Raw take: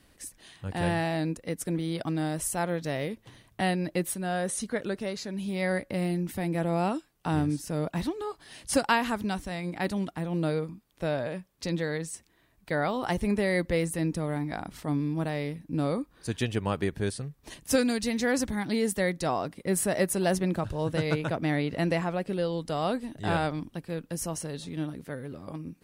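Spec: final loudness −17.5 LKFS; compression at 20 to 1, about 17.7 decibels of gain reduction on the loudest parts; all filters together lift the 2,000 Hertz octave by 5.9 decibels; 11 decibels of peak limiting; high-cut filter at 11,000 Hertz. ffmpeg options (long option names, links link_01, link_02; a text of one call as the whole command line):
ffmpeg -i in.wav -af "lowpass=11000,equalizer=frequency=2000:width_type=o:gain=7,acompressor=threshold=-35dB:ratio=20,volume=24.5dB,alimiter=limit=-7.5dB:level=0:latency=1" out.wav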